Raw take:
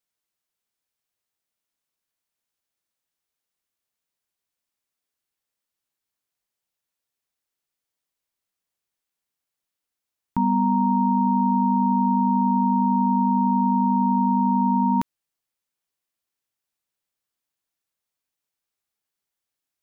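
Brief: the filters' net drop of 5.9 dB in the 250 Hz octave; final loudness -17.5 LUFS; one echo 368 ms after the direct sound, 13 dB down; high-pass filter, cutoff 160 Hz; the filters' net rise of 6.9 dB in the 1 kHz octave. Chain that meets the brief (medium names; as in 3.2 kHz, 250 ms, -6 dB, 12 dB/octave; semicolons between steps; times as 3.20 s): high-pass 160 Hz; peaking EQ 250 Hz -6 dB; peaking EQ 1 kHz +7.5 dB; delay 368 ms -13 dB; trim -1.5 dB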